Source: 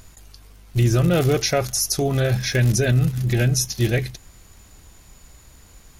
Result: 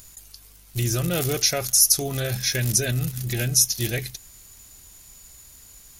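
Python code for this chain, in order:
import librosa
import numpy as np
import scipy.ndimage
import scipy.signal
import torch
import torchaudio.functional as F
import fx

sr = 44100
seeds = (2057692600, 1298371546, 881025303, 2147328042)

y = librosa.effects.preemphasis(x, coef=0.8, zi=[0.0])
y = y * 10.0 ** (6.5 / 20.0)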